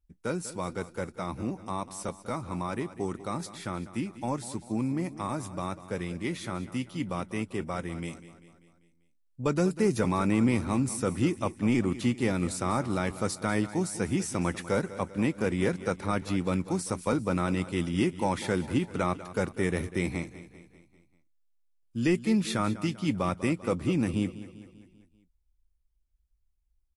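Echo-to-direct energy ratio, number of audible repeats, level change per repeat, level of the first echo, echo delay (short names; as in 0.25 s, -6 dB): -13.5 dB, 4, -5.5 dB, -15.0 dB, 0.196 s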